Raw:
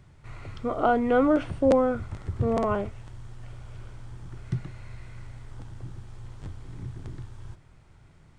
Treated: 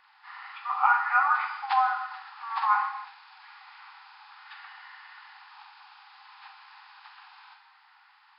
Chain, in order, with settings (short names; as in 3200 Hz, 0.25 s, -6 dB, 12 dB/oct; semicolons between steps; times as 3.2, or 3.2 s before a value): nonlinear frequency compression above 1400 Hz 1.5:1; FFT band-pass 750–5400 Hz; non-linear reverb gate 0.34 s falling, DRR 3 dB; gain +7 dB